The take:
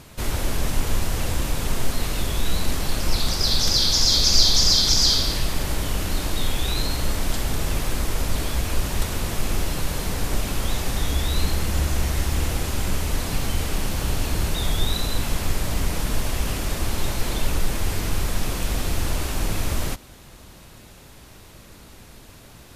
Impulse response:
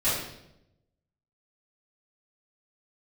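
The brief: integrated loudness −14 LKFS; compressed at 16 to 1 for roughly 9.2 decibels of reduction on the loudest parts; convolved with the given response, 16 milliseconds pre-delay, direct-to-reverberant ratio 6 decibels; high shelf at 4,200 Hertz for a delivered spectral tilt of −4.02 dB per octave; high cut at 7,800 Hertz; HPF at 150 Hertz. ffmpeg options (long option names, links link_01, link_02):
-filter_complex "[0:a]highpass=150,lowpass=7800,highshelf=frequency=4200:gain=-8,acompressor=threshold=-28dB:ratio=16,asplit=2[link_01][link_02];[1:a]atrim=start_sample=2205,adelay=16[link_03];[link_02][link_03]afir=irnorm=-1:irlink=0,volume=-18dB[link_04];[link_01][link_04]amix=inputs=2:normalize=0,volume=17.5dB"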